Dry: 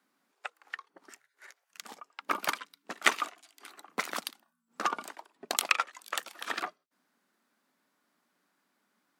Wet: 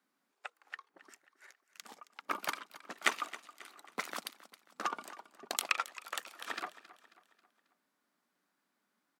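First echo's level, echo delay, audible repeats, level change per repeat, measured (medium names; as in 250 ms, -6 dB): -17.0 dB, 270 ms, 3, -6.5 dB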